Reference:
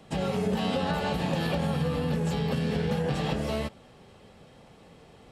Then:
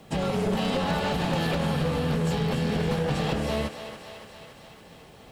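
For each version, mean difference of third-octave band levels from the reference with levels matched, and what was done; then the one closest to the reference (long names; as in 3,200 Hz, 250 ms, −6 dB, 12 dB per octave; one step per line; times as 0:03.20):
3.5 dB: wavefolder on the positive side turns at −24 dBFS
bit reduction 11 bits
feedback echo with a high-pass in the loop 282 ms, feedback 70%, high-pass 400 Hz, level −9.5 dB
level +2.5 dB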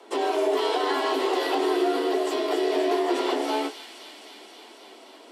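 10.0 dB: flanger 0.42 Hz, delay 8.7 ms, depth 8.2 ms, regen −47%
frequency shifter +210 Hz
delay with a high-pass on its return 264 ms, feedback 77%, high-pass 2,500 Hz, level −8 dB
level +7.5 dB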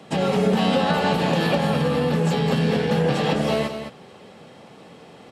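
2.0 dB: high-pass filter 160 Hz 12 dB per octave
high-shelf EQ 8,300 Hz −5.5 dB
on a send: single-tap delay 210 ms −9 dB
on the sum: level +8.5 dB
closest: third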